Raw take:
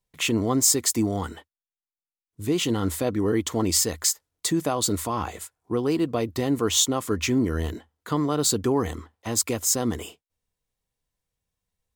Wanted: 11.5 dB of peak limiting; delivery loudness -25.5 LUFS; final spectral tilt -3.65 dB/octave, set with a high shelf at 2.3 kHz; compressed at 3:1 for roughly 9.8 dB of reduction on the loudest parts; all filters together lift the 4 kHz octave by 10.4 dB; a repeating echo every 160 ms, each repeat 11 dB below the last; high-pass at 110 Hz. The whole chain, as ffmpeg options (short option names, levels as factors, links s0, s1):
-af "highpass=110,highshelf=f=2300:g=8,equalizer=f=4000:t=o:g=5.5,acompressor=threshold=0.1:ratio=3,alimiter=limit=0.133:level=0:latency=1,aecho=1:1:160|320|480:0.282|0.0789|0.0221,volume=1.33"